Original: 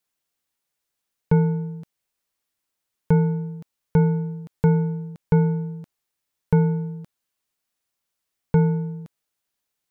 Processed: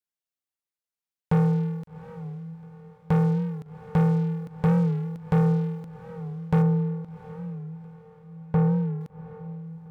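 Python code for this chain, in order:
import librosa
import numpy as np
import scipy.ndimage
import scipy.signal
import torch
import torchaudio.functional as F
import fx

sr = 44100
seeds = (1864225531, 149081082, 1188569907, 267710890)

y = scipy.signal.sosfilt(scipy.signal.butter(2, 44.0, 'highpass', fs=sr, output='sos'), x)
y = fx.leveller(y, sr, passes=3)
y = fx.lowpass(y, sr, hz=1300.0, slope=6, at=(6.62, 9.01))
y = fx.echo_diffused(y, sr, ms=757, feedback_pct=43, wet_db=-14)
y = fx.record_warp(y, sr, rpm=45.0, depth_cents=100.0)
y = y * 10.0 ** (-8.5 / 20.0)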